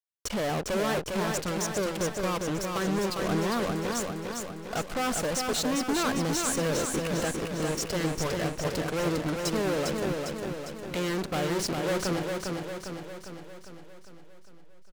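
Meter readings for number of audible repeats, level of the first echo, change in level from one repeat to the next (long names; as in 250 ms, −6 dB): 7, −4.0 dB, −5.0 dB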